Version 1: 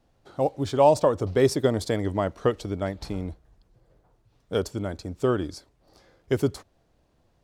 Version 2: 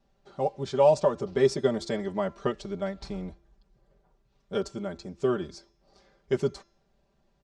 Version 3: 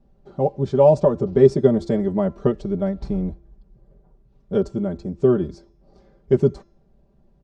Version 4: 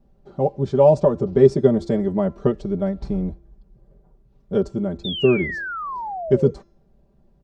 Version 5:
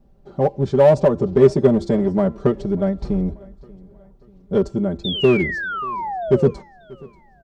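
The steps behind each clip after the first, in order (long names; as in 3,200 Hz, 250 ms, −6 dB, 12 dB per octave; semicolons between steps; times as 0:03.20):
low-pass filter 7,600 Hz 24 dB per octave; comb filter 5.1 ms, depth 93%; hum removal 340.8 Hz, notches 20; level −6 dB
tilt shelving filter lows +10 dB, about 790 Hz; level +3.5 dB
sound drawn into the spectrogram fall, 0:05.04–0:06.51, 460–3,700 Hz −29 dBFS
in parallel at −4.5 dB: hard clipping −16.5 dBFS, distortion −7 dB; on the sum: repeating echo 587 ms, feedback 46%, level −23.5 dB; level −1 dB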